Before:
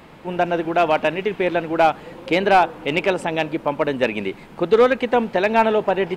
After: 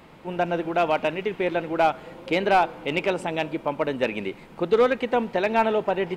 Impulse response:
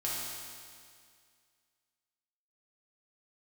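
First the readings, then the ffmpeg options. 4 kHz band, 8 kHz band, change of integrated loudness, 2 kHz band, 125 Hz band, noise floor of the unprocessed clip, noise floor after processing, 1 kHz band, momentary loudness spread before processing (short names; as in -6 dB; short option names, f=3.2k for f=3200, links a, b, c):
-4.5 dB, n/a, -4.5 dB, -5.0 dB, -4.0 dB, -43 dBFS, -47 dBFS, -4.5 dB, 8 LU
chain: -filter_complex "[0:a]bandreject=f=1.7k:w=27,asplit=2[a][b];[1:a]atrim=start_sample=2205,asetrate=66150,aresample=44100[c];[b][c]afir=irnorm=-1:irlink=0,volume=-21.5dB[d];[a][d]amix=inputs=2:normalize=0,volume=-5dB"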